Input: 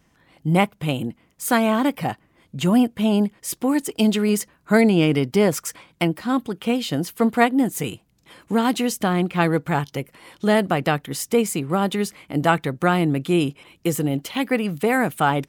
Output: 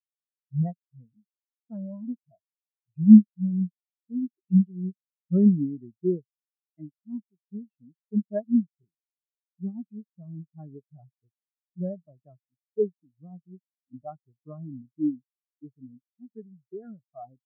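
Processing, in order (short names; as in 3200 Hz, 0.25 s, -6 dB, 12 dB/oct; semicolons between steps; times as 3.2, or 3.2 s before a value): wide varispeed 0.887×; vibrato 3.7 Hz 64 cents; spectral expander 4:1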